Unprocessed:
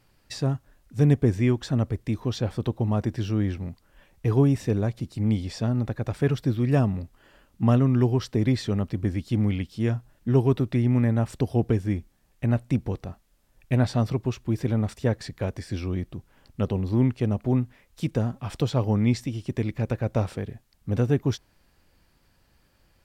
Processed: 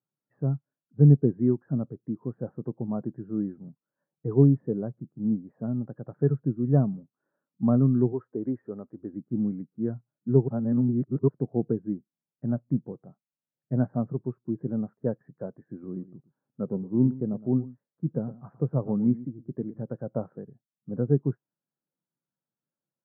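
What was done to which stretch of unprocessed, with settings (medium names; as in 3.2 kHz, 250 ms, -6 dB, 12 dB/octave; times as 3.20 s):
8.12–9.13 s: peaking EQ 160 Hz -13 dB
10.48–11.28 s: reverse
15.60–19.81 s: delay 113 ms -12 dB
whole clip: elliptic band-pass 140–1500 Hz, stop band 40 dB; spectral contrast expander 1.5:1; trim +2 dB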